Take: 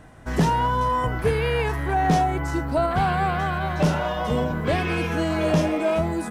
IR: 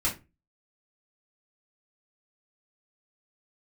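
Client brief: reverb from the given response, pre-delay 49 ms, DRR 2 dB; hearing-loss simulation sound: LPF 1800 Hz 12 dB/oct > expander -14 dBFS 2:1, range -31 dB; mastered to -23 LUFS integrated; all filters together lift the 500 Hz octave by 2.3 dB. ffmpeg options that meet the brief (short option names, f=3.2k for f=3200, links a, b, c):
-filter_complex "[0:a]equalizer=f=500:t=o:g=3,asplit=2[a][b];[1:a]atrim=start_sample=2205,adelay=49[c];[b][c]afir=irnorm=-1:irlink=0,volume=-10dB[d];[a][d]amix=inputs=2:normalize=0,lowpass=1.8k,agate=range=-31dB:threshold=-14dB:ratio=2,volume=-2dB"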